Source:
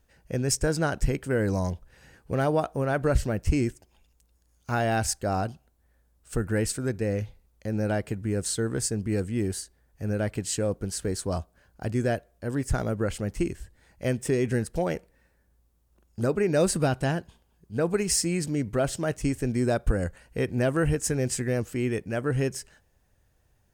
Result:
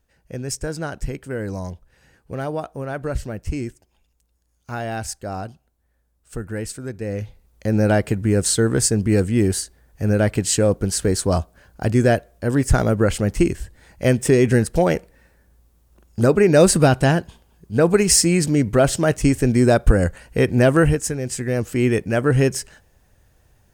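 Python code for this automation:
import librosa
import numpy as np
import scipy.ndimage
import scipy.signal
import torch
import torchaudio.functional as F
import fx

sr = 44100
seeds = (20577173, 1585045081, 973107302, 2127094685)

y = fx.gain(x, sr, db=fx.line((6.92, -2.0), (7.69, 10.0), (20.79, 10.0), (21.2, 0.0), (21.84, 9.5)))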